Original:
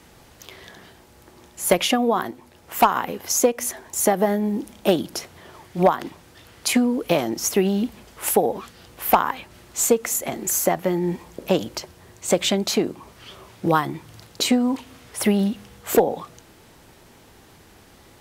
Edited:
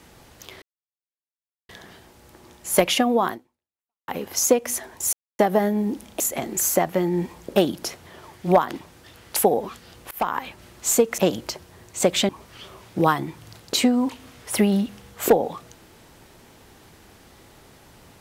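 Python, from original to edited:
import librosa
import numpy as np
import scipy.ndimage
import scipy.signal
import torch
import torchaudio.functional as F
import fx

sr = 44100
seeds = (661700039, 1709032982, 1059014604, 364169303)

y = fx.edit(x, sr, fx.insert_silence(at_s=0.62, length_s=1.07),
    fx.fade_out_span(start_s=2.24, length_s=0.77, curve='exp'),
    fx.insert_silence(at_s=4.06, length_s=0.26),
    fx.cut(start_s=6.67, length_s=1.61),
    fx.fade_in_from(start_s=9.03, length_s=0.34, floor_db=-23.5),
    fx.move(start_s=10.1, length_s=1.36, to_s=4.87),
    fx.cut(start_s=12.57, length_s=0.39), tone=tone)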